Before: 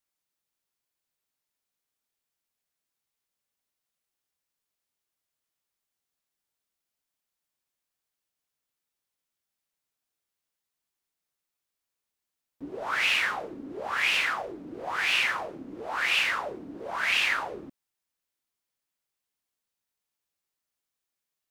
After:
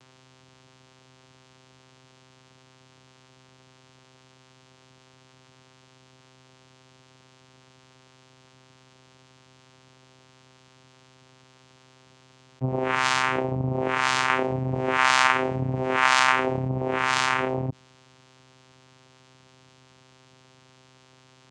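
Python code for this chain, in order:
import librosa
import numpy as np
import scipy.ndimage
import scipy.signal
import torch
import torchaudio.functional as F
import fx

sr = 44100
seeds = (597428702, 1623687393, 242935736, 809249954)

y = fx.peak_eq(x, sr, hz=2000.0, db=10.0, octaves=1.2, at=(14.29, 16.68))
y = fx.vocoder(y, sr, bands=4, carrier='saw', carrier_hz=130.0)
y = fx.env_flatten(y, sr, amount_pct=50)
y = y * librosa.db_to_amplitude(-2.0)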